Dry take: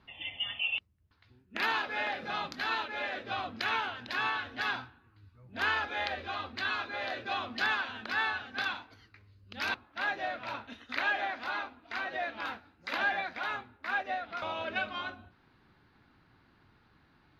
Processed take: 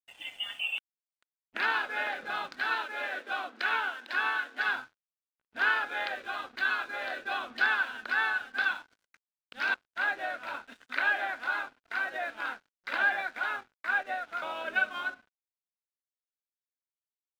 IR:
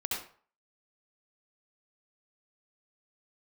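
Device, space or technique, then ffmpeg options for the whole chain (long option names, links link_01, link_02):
pocket radio on a weak battery: -filter_complex "[0:a]highpass=280,lowpass=4400,aeval=exprs='sgn(val(0))*max(abs(val(0))-0.00178,0)':channel_layout=same,equalizer=frequency=1500:width_type=o:width=0.21:gain=9.5,asettb=1/sr,asplit=3[link_01][link_02][link_03];[link_01]atrim=end=2.704[link_04];[link_02]atrim=start=2.7:end=4.69,asetpts=PTS-STARTPTS,afade=type=in:duration=0.004:curve=qsin,afade=type=out:start_time=1.986:duration=0.004:curve=qsin,highpass=frequency=220:width=0.5412,highpass=frequency=220:width=1.3066[link_05];[link_03]atrim=start=4.686[link_06];[link_04][link_05]acrossfade=duration=0.004:curve1=hsin:curve2=qsin[link_07];[link_07][link_06]acrossfade=duration=0.004:curve1=qsin:curve2=hsin"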